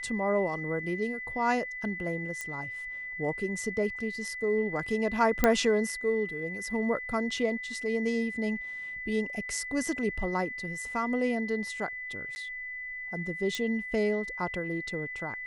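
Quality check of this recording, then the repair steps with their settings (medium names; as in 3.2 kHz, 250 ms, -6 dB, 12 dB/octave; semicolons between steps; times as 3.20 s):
whine 2 kHz -36 dBFS
2.41 s: pop -21 dBFS
5.44 s: pop -8 dBFS
12.35–12.36 s: dropout 10 ms
13.55 s: pop -18 dBFS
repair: de-click; band-stop 2 kHz, Q 30; interpolate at 12.35 s, 10 ms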